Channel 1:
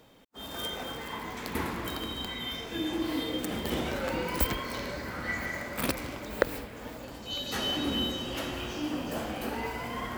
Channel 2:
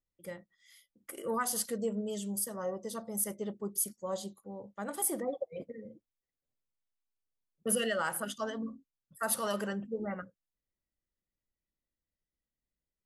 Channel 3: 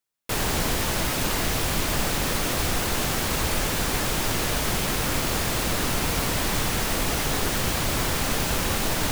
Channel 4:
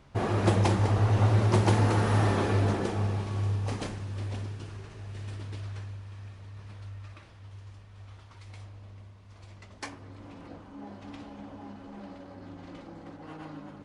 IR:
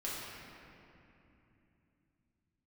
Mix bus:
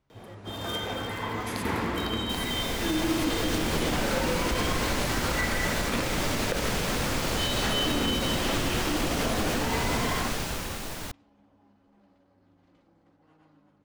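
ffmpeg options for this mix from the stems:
-filter_complex "[0:a]highshelf=f=10k:g=-10,asoftclip=type=tanh:threshold=-10.5dB,adelay=100,volume=2.5dB,asplit=2[a][b];[b]volume=-7dB[c];[1:a]volume=-9.5dB[d];[2:a]dynaudnorm=f=150:g=11:m=11.5dB,adelay=2000,volume=-12dB[e];[3:a]volume=-18.5dB[f];[4:a]atrim=start_sample=2205[g];[c][g]afir=irnorm=-1:irlink=0[h];[a][d][e][f][h]amix=inputs=5:normalize=0,acrossover=split=7900[i][j];[j]acompressor=threshold=-39dB:ratio=4:attack=1:release=60[k];[i][k]amix=inputs=2:normalize=0,alimiter=limit=-17dB:level=0:latency=1:release=64"

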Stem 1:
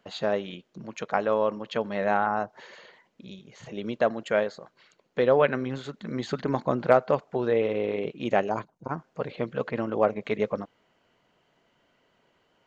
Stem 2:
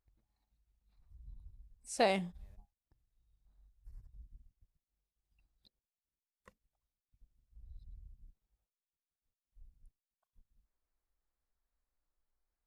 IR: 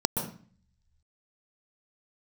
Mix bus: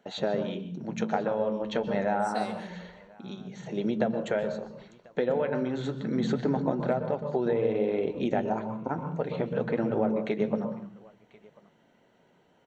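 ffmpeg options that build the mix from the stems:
-filter_complex "[0:a]acompressor=threshold=-27dB:ratio=10,flanger=delay=4.9:depth=6.6:regen=-65:speed=0.28:shape=sinusoidal,acontrast=35,volume=-4dB,asplit=4[a][b][c][d];[b]volume=-9.5dB[e];[c]volume=-20dB[f];[1:a]equalizer=f=4.1k:w=0.35:g=8,adelay=350,volume=-9.5dB,asplit=2[g][h];[h]volume=-13dB[i];[d]apad=whole_len=574017[j];[g][j]sidechaincompress=threshold=-40dB:ratio=8:attack=16:release=291[k];[2:a]atrim=start_sample=2205[l];[e][i]amix=inputs=2:normalize=0[m];[m][l]afir=irnorm=-1:irlink=0[n];[f]aecho=0:1:1041:1[o];[a][k][n][o]amix=inputs=4:normalize=0"

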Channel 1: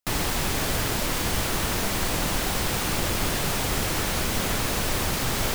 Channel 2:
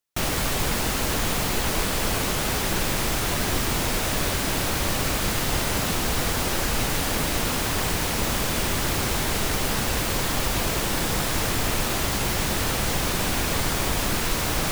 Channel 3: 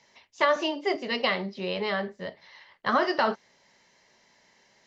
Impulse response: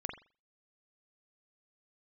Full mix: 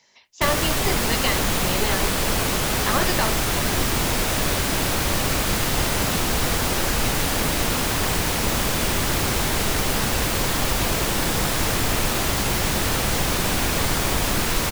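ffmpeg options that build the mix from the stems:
-filter_complex "[1:a]adelay=250,volume=2.5dB[a];[2:a]highshelf=f=3.3k:g=9,volume=-1.5dB[b];[a][b]amix=inputs=2:normalize=0"

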